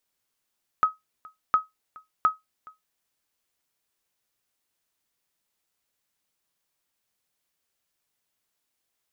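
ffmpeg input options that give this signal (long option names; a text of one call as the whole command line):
ffmpeg -f lavfi -i "aevalsrc='0.266*(sin(2*PI*1270*mod(t,0.71))*exp(-6.91*mod(t,0.71)/0.17)+0.0562*sin(2*PI*1270*max(mod(t,0.71)-0.42,0))*exp(-6.91*max(mod(t,0.71)-0.42,0)/0.17))':duration=2.13:sample_rate=44100" out.wav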